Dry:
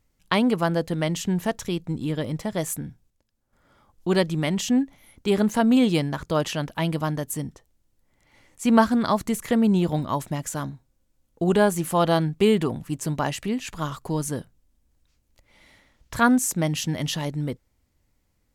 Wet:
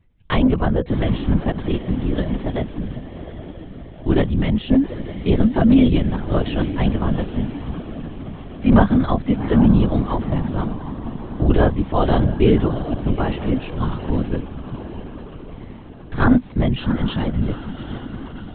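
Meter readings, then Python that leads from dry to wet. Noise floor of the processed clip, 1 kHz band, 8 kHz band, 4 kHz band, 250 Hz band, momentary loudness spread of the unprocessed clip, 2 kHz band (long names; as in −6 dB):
−38 dBFS, +0.5 dB, below −40 dB, −1.5 dB, +5.0 dB, 12 LU, 0.0 dB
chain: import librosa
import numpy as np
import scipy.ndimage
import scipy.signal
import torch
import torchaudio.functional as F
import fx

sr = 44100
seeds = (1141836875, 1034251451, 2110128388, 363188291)

p1 = fx.low_shelf(x, sr, hz=280.0, db=10.0)
p2 = p1 + fx.echo_diffused(p1, sr, ms=759, feedback_pct=59, wet_db=-11.5, dry=0)
y = fx.lpc_vocoder(p2, sr, seeds[0], excitation='whisper', order=16)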